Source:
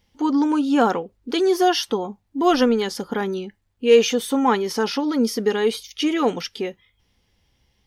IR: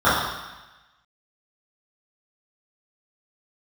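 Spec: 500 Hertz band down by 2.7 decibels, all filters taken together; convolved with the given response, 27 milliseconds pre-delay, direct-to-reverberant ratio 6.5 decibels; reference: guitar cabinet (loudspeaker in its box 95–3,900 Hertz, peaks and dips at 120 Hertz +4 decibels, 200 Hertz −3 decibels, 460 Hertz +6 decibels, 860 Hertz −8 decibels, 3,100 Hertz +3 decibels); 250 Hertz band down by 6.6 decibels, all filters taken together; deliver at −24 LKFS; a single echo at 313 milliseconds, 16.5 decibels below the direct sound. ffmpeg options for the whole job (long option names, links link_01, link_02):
-filter_complex "[0:a]equalizer=frequency=250:width_type=o:gain=-6,equalizer=frequency=500:width_type=o:gain=-6,aecho=1:1:313:0.15,asplit=2[link_01][link_02];[1:a]atrim=start_sample=2205,adelay=27[link_03];[link_02][link_03]afir=irnorm=-1:irlink=0,volume=-31.5dB[link_04];[link_01][link_04]amix=inputs=2:normalize=0,highpass=95,equalizer=frequency=120:width_type=q:width=4:gain=4,equalizer=frequency=200:width_type=q:width=4:gain=-3,equalizer=frequency=460:width_type=q:width=4:gain=6,equalizer=frequency=860:width_type=q:width=4:gain=-8,equalizer=frequency=3100:width_type=q:width=4:gain=3,lowpass=frequency=3900:width=0.5412,lowpass=frequency=3900:width=1.3066"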